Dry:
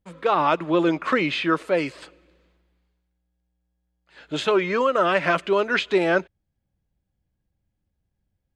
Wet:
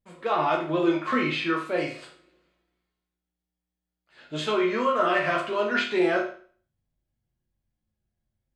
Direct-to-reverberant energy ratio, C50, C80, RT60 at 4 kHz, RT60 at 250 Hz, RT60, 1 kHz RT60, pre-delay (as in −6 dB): −2.5 dB, 6.5 dB, 11.0 dB, 0.45 s, 0.45 s, 0.45 s, 0.45 s, 8 ms